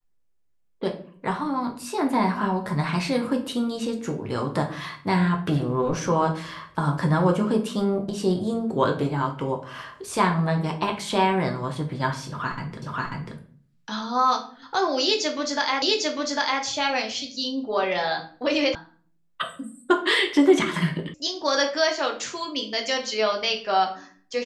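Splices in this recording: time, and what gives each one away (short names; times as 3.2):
12.82 repeat of the last 0.54 s
15.82 repeat of the last 0.8 s
18.75 sound cut off
21.14 sound cut off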